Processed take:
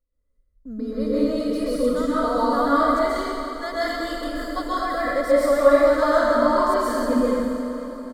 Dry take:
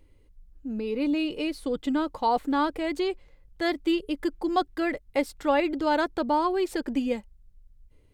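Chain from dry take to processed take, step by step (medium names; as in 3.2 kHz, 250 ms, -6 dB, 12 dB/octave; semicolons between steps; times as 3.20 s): gate -44 dBFS, range -22 dB; static phaser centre 530 Hz, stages 8; comb 1.6 ms, depth 32%; echo that smears into a reverb 556 ms, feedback 43%, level -14 dB; plate-style reverb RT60 2.2 s, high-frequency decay 0.85×, pre-delay 115 ms, DRR -9.5 dB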